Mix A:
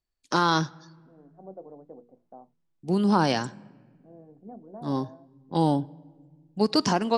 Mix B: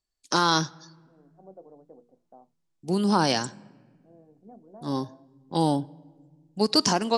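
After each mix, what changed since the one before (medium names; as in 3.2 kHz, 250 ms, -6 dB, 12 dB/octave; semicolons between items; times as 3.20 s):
second voice -4.5 dB; master: add tone controls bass -2 dB, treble +9 dB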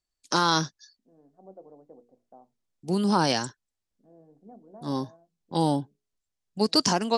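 reverb: off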